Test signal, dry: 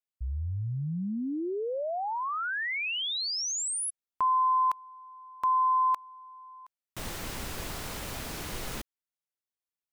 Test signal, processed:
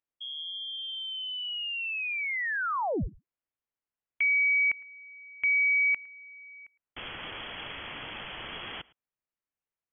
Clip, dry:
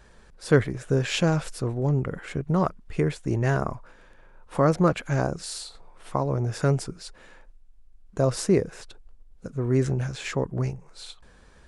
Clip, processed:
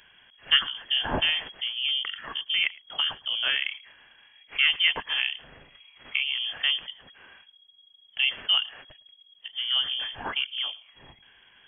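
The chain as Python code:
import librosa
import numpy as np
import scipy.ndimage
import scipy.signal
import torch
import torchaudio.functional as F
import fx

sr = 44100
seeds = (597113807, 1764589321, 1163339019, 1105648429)

y = fx.tilt_eq(x, sr, slope=2.0)
y = y + 10.0 ** (-23.5 / 20.0) * np.pad(y, (int(109 * sr / 1000.0), 0))[:len(y)]
y = fx.freq_invert(y, sr, carrier_hz=3300)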